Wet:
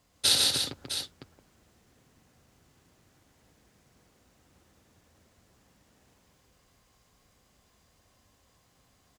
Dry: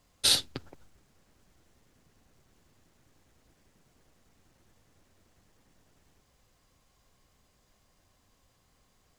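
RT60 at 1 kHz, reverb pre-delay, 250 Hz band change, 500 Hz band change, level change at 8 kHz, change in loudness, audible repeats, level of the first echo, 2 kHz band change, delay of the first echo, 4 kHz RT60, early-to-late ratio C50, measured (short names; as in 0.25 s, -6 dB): none, none, +3.0 dB, +3.5 dB, +3.0 dB, +1.0 dB, 4, -5.5 dB, +3.0 dB, 0.114 s, none, none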